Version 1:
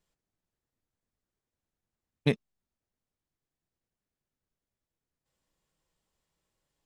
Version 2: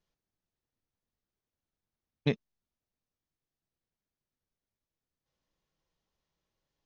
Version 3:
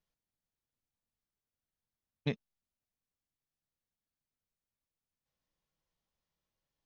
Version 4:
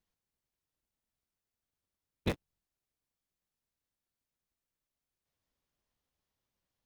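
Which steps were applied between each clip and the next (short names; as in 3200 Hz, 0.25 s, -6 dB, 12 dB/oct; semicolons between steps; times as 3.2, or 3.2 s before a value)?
Chebyshev low-pass 6400 Hz, order 5; gain -2.5 dB
bell 370 Hz -4 dB 0.54 oct; gain -4.5 dB
cycle switcher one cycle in 3, inverted; gain +1 dB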